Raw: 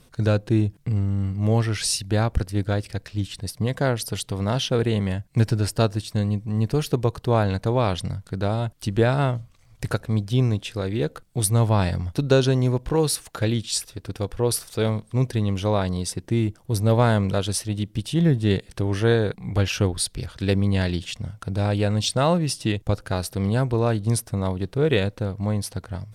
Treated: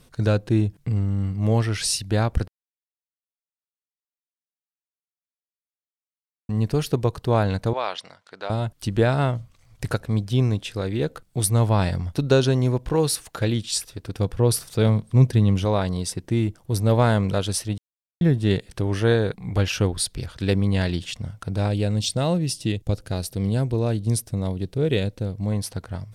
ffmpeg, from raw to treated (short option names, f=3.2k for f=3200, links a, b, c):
-filter_complex "[0:a]asettb=1/sr,asplit=3[a][b][c];[a]atrim=end=7.734[d];[b]atrim=start=7.73:end=8.5,asetpts=PTS-STARTPTS,afade=t=in:d=0.004:c=qsin,afade=t=out:st=0.766:d=0.004:c=qsin,highpass=700,lowpass=5.2k[e];[c]atrim=start=8.496[f];[d][e]acrossfade=d=0.004:c1=hsin:c2=qsin[g];[g][f]acrossfade=d=0.004:c1=qsin:c2=hsin,asettb=1/sr,asplit=3[h][i][j];[h]atrim=end=14.174[k];[i]atrim=start=14.17:end=15.65,asetpts=PTS-STARTPTS,afade=t=in:d=0.004:c=qsin,afade=t=out:st=1.476:d=0.004:c=qsin,equalizer=f=140:w=0.8:g=7[l];[j]atrim=start=15.646[m];[k][l]acrossfade=d=0.004:c1=hsin:c2=qsin[n];[n][m]acrossfade=d=0.004:c1=qsin:c2=hsin,asettb=1/sr,asplit=3[o][p][q];[o]atrim=end=21.684[r];[p]atrim=start=21.68:end=25.52,asetpts=PTS-STARTPTS,afade=t=in:d=0.004:c=qsin,afade=t=out:st=3.836:d=0.004:c=qsin,equalizer=f=1.2k:t=o:w=1.7:g=-9.5[s];[q]atrim=start=25.516[t];[r][s]acrossfade=d=0.004:c1=hsin:c2=qsin[u];[u][t]acrossfade=d=0.004:c1=qsin:c2=hsin,asplit=5[v][w][x][y][z];[v]atrim=end=2.48,asetpts=PTS-STARTPTS,afade=t=out:st=2.476:d=0.004:c=hsin[aa];[w]atrim=start=2.48:end=6.49,asetpts=PTS-STARTPTS,volume=0[ab];[x]atrim=start=6.49:end=17.78,asetpts=PTS-STARTPTS,afade=t=in:d=0.004:c=hsin,afade=t=out:st=11.286:d=0.004:c=hsin[ac];[y]atrim=start=17.78:end=18.21,asetpts=PTS-STARTPTS,volume=0[ad];[z]atrim=start=18.21,asetpts=PTS-STARTPTS,afade=t=in:d=0.004:c=hsin[ae];[aa][ab][ac][ad][ae]concat=n=5:v=0:a=1"